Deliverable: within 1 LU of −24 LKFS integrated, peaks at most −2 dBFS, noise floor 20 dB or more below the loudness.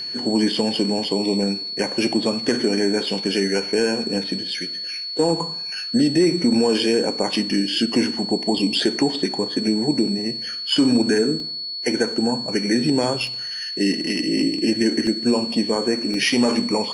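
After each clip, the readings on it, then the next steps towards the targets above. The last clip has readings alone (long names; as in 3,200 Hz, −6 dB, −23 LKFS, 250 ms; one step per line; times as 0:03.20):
number of dropouts 4; longest dropout 1.6 ms; interfering tone 4,400 Hz; level of the tone −27 dBFS; integrated loudness −20.5 LKFS; sample peak −5.5 dBFS; target loudness −24.0 LKFS
→ repair the gap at 0:11.40/0:13.27/0:15.07/0:16.14, 1.6 ms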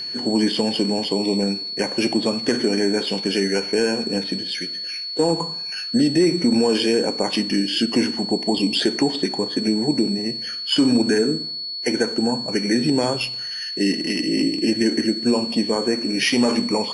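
number of dropouts 0; interfering tone 4,400 Hz; level of the tone −27 dBFS
→ notch filter 4,400 Hz, Q 30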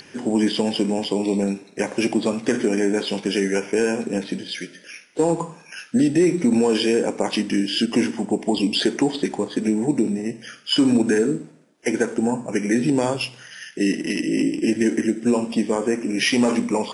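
interfering tone none found; integrated loudness −21.5 LKFS; sample peak −6.0 dBFS; target loudness −24.0 LKFS
→ level −2.5 dB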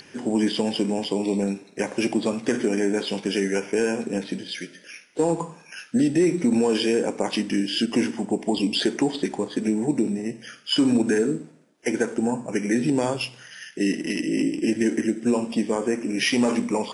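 integrated loudness −24.0 LKFS; sample peak −8.5 dBFS; background noise floor −51 dBFS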